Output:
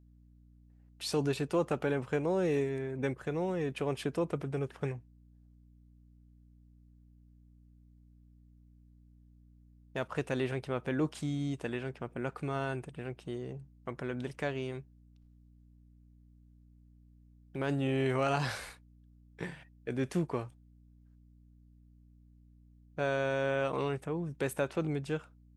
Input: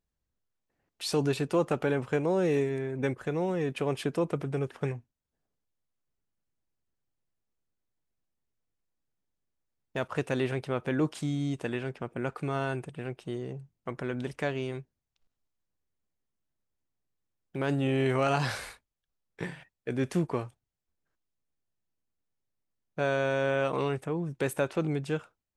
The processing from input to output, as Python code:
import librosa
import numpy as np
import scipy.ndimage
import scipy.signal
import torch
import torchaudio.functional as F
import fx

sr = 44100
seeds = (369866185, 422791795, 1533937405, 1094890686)

y = fx.add_hum(x, sr, base_hz=60, snr_db=23)
y = y * librosa.db_to_amplitude(-3.5)